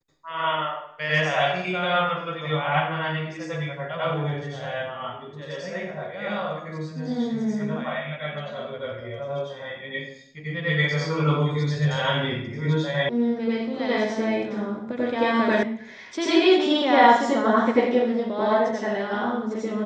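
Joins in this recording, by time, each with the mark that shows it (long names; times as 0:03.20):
0:13.09: cut off before it has died away
0:15.63: cut off before it has died away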